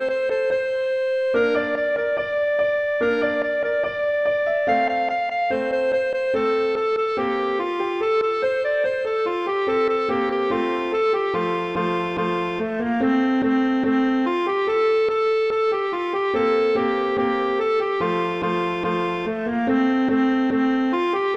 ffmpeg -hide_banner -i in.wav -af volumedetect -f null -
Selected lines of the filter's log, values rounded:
mean_volume: -21.2 dB
max_volume: -9.6 dB